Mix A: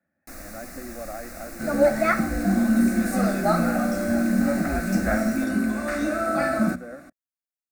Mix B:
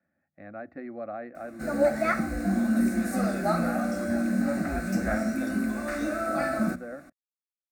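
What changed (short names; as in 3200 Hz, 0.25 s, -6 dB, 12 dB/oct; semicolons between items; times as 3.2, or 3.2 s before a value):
first sound: muted; second sound -4.5 dB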